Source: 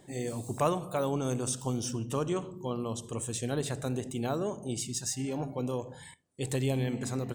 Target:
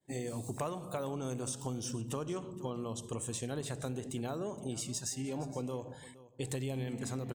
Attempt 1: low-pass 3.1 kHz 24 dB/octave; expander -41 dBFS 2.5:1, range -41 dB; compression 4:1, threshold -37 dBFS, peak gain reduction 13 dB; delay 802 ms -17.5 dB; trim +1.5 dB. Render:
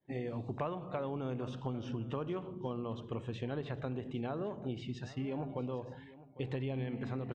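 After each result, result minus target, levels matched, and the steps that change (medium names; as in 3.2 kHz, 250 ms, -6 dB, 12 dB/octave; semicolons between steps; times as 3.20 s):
echo 335 ms late; 4 kHz band -5.5 dB
change: delay 467 ms -17.5 dB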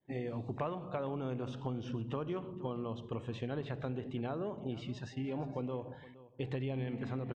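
4 kHz band -5.5 dB
remove: low-pass 3.1 kHz 24 dB/octave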